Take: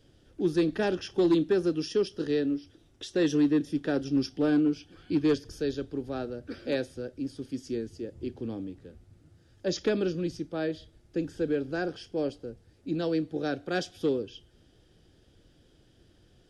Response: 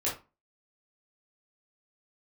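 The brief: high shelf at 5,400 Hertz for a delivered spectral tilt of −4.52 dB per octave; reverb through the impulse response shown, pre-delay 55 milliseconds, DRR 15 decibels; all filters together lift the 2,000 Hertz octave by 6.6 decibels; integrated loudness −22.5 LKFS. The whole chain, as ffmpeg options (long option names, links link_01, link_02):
-filter_complex "[0:a]equalizer=frequency=2000:width_type=o:gain=8.5,highshelf=frequency=5400:gain=4.5,asplit=2[link_01][link_02];[1:a]atrim=start_sample=2205,adelay=55[link_03];[link_02][link_03]afir=irnorm=-1:irlink=0,volume=-21.5dB[link_04];[link_01][link_04]amix=inputs=2:normalize=0,volume=6.5dB"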